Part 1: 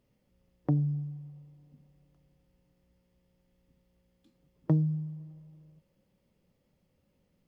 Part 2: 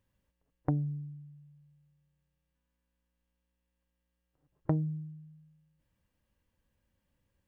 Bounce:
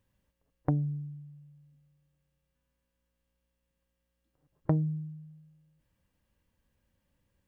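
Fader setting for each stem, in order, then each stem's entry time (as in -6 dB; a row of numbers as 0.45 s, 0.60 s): -18.5 dB, +2.0 dB; 0.00 s, 0.00 s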